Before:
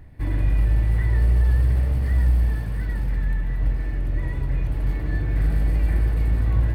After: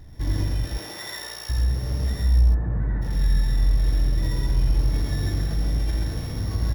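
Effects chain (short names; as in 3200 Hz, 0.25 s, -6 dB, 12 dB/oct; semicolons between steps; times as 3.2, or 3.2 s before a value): sample sorter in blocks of 8 samples; 0.63–1.49 HPF 350 Hz -> 1100 Hz 12 dB/oct; limiter -18.5 dBFS, peak gain reduction 8.5 dB; 2.4–3.01 LPF 1400 Hz -> 1800 Hz 24 dB/oct; loudspeakers at several distances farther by 29 m -3 dB, 46 m -2 dB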